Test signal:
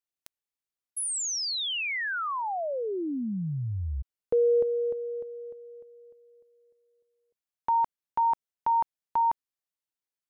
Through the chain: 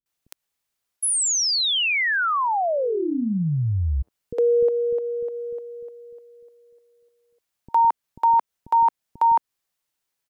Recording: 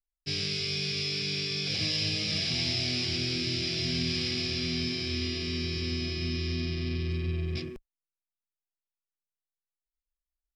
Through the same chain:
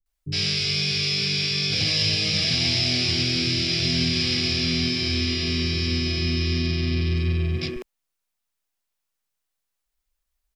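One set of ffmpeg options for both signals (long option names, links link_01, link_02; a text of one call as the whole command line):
ffmpeg -i in.wav -filter_complex "[0:a]asplit=2[link_01][link_02];[link_02]acompressor=threshold=-37dB:ratio=6:attack=0.29:release=145:knee=1:detection=rms,volume=1.5dB[link_03];[link_01][link_03]amix=inputs=2:normalize=0,acrossover=split=310[link_04][link_05];[link_05]adelay=60[link_06];[link_04][link_06]amix=inputs=2:normalize=0,volume=5.5dB" out.wav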